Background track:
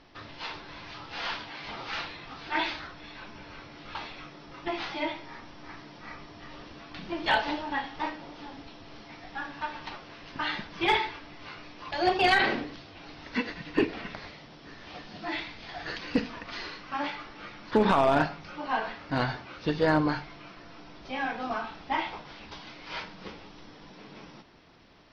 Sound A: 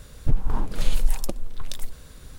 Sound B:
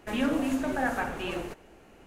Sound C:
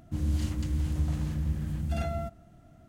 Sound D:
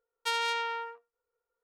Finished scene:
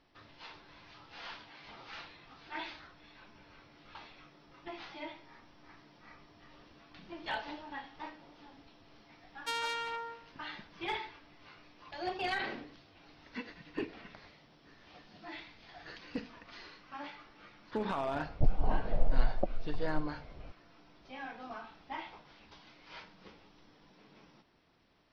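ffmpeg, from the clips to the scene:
-filter_complex "[0:a]volume=-12.5dB[a];[4:a]aecho=1:1:162:0.224[b];[1:a]lowpass=f=690:t=q:w=5[c];[b]atrim=end=1.63,asetpts=PTS-STARTPTS,volume=-5.5dB,afade=t=in:d=0.004:c=hsin,afade=t=out:st=1.626:d=0.004:c=hsin,adelay=9210[d];[c]atrim=end=2.38,asetpts=PTS-STARTPTS,volume=-6.5dB,afade=t=in:d=0.004:c=hsin,afade=t=out:st=2.376:d=0.004:c=hsin,adelay=18140[e];[a][d][e]amix=inputs=3:normalize=0"

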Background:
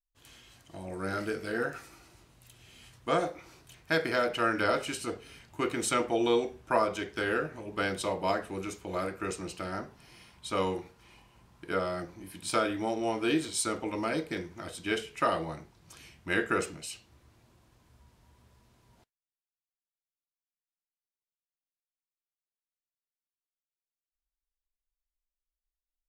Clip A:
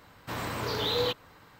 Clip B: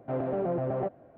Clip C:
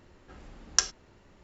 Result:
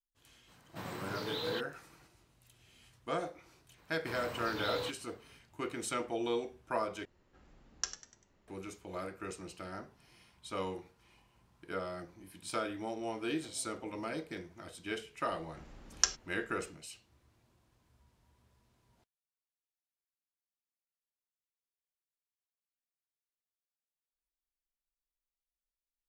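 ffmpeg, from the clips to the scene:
-filter_complex "[1:a]asplit=2[a][b];[3:a]asplit=2[c][d];[0:a]volume=-8dB[e];[a]lowshelf=f=110:t=q:w=3:g=-7.5[f];[c]asplit=5[g][h][i][j][k];[h]adelay=98,afreqshift=95,volume=-13dB[l];[i]adelay=196,afreqshift=190,volume=-20.7dB[m];[j]adelay=294,afreqshift=285,volume=-28.5dB[n];[k]adelay=392,afreqshift=380,volume=-36.2dB[o];[g][l][m][n][o]amix=inputs=5:normalize=0[p];[2:a]acompressor=threshold=-43dB:ratio=6:attack=3.2:release=140:knee=1:detection=peak[q];[e]asplit=2[r][s];[r]atrim=end=7.054[t];[p]atrim=end=1.43,asetpts=PTS-STARTPTS,volume=-13dB[u];[s]atrim=start=8.476[v];[f]atrim=end=1.59,asetpts=PTS-STARTPTS,volume=-10dB,afade=t=in:d=0.004:c=hsin,afade=t=out:st=1.586:d=0.004:c=hsin,adelay=480[w];[b]atrim=end=1.59,asetpts=PTS-STARTPTS,volume=-10.5dB,afade=t=in:d=0.004:c=hsin,afade=t=out:st=1.586:d=0.004:c=hsin,adelay=3780[x];[q]atrim=end=1.17,asetpts=PTS-STARTPTS,volume=-15dB,afade=t=in:d=0.004:c=hsin,afade=t=out:st=1.166:d=0.004:c=hsin,adelay=13360[y];[d]atrim=end=1.43,asetpts=PTS-STARTPTS,volume=-4.5dB,afade=t=in:d=0.004:c=hsin,afade=t=out:st=1.426:d=0.004:c=hsin,adelay=15250[z];[t][u]acrossfade=d=0.004:c1=hsin:c2=hsin[aa];[aa][v]acrossfade=d=0.004:c1=hsin:c2=hsin[ab];[ab][w][x][y][z]amix=inputs=5:normalize=0"

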